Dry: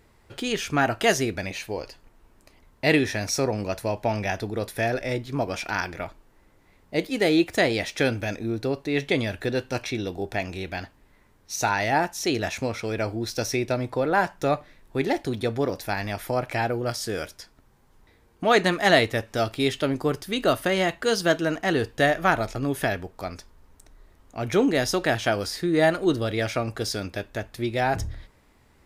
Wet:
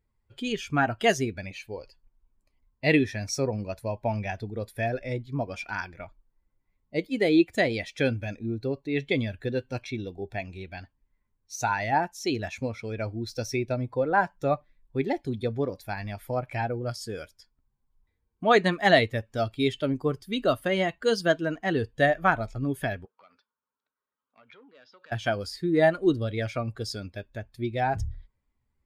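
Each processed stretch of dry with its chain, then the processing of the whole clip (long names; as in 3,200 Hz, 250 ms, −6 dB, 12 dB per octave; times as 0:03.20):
0:23.05–0:25.12: downward compressor 5 to 1, threshold −32 dBFS + loudspeaker in its box 340–4,100 Hz, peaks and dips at 340 Hz −10 dB, 700 Hz −7 dB, 1,400 Hz +5 dB, 2,000 Hz −5 dB + saturating transformer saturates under 2,100 Hz
whole clip: spectral dynamics exaggerated over time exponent 1.5; low-pass filter 3,900 Hz 6 dB per octave; level +1.5 dB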